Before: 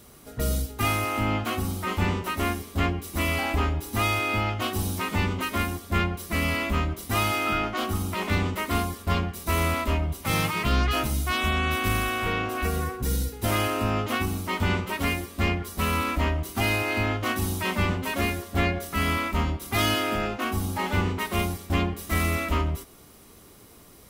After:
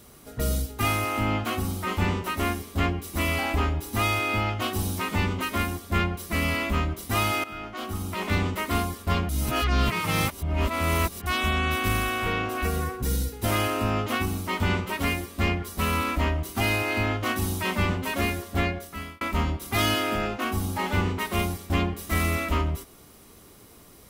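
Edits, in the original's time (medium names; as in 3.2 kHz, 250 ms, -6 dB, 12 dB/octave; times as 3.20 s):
7.44–8.35 s: fade in, from -16 dB
9.29–11.26 s: reverse
18.52–19.21 s: fade out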